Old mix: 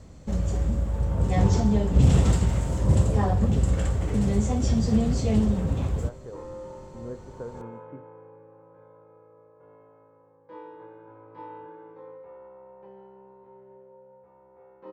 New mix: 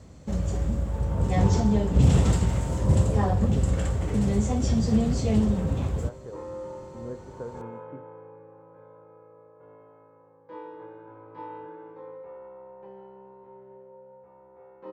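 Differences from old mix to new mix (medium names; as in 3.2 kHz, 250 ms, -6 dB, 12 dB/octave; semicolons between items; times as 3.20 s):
second sound: send +10.5 dB; master: add high-pass 52 Hz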